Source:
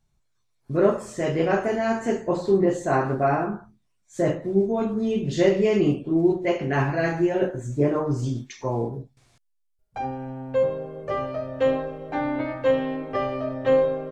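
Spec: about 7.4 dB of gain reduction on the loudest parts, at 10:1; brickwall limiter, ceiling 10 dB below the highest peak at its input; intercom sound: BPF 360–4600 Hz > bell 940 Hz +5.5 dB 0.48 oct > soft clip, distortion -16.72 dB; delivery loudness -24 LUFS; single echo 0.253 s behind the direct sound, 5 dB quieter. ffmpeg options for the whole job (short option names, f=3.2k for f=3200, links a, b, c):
-af "acompressor=threshold=-21dB:ratio=10,alimiter=limit=-24dB:level=0:latency=1,highpass=360,lowpass=4.6k,equalizer=f=940:t=o:w=0.48:g=5.5,aecho=1:1:253:0.562,asoftclip=threshold=-27.5dB,volume=11dB"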